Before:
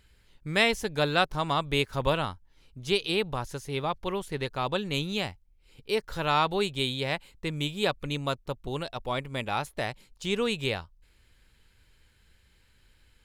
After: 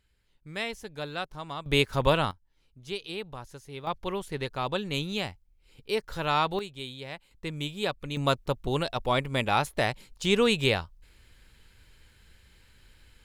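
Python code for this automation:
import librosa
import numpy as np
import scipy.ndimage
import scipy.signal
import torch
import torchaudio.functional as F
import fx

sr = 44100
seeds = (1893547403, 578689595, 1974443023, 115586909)

y = fx.gain(x, sr, db=fx.steps((0.0, -10.0), (1.66, 3.0), (2.31, -9.0), (3.87, -1.0), (6.59, -10.0), (7.31, -3.0), (8.17, 5.0)))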